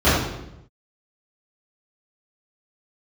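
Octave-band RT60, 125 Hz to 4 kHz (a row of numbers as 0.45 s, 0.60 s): 1.1 s, 0.95 s, 0.90 s, 0.80 s, 0.75 s, 0.70 s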